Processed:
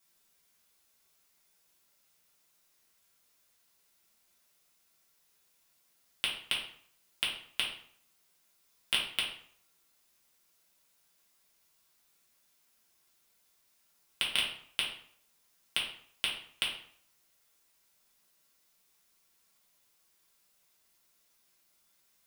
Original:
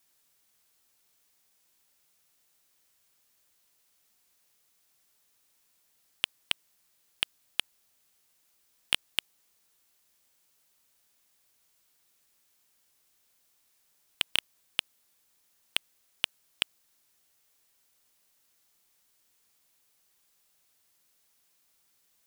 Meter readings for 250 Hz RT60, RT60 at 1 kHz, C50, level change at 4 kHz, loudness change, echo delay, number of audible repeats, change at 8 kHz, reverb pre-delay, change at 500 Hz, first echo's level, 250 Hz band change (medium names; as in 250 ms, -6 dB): 0.55 s, 0.60 s, 5.0 dB, -0.5 dB, -1.0 dB, no echo, no echo, -1.0 dB, 3 ms, +0.5 dB, no echo, +1.0 dB